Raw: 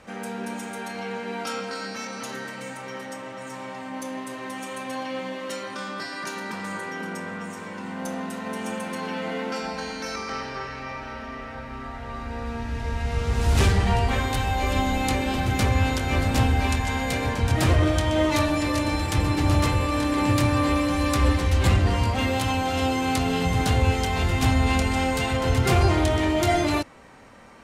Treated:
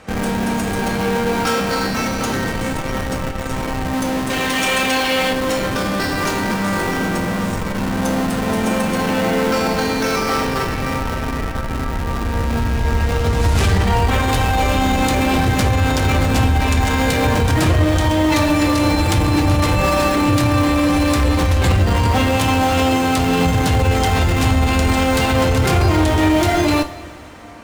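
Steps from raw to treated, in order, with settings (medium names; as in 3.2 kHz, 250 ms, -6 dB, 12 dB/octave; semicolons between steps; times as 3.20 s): 4.30–5.33 s: frequency weighting D; in parallel at -6 dB: Schmitt trigger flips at -30.5 dBFS; on the sum: peak limiter -16 dBFS, peak gain reduction 6 dB; 19.76–20.16 s: comb 5.3 ms, depth 86%; two-slope reverb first 0.47 s, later 3.9 s, from -16 dB, DRR 7.5 dB; trim +7 dB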